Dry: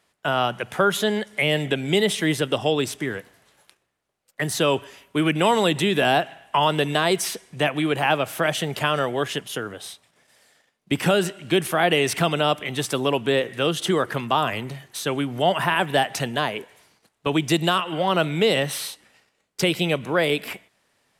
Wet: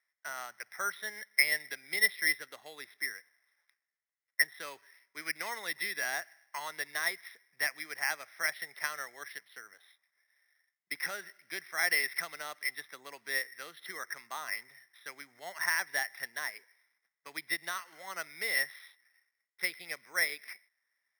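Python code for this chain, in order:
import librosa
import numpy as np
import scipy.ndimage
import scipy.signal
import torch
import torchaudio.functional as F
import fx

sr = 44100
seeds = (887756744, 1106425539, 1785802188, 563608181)

y = fx.double_bandpass(x, sr, hz=2900.0, octaves=1.1)
y = np.repeat(scipy.signal.resample_poly(y, 1, 6), 6)[:len(y)]
y = fx.upward_expand(y, sr, threshold_db=-46.0, expansion=1.5)
y = F.gain(torch.from_numpy(y), 5.5).numpy()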